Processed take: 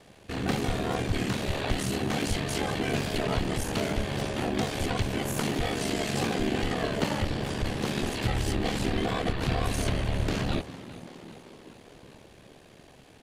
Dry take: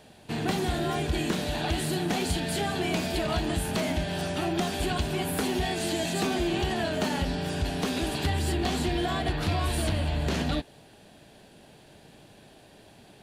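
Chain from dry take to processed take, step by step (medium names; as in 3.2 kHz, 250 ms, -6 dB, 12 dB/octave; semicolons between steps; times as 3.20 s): frequency-shifting echo 395 ms, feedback 62%, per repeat +71 Hz, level -16.5 dB; ring modulator 36 Hz; harmony voices -7 st -1 dB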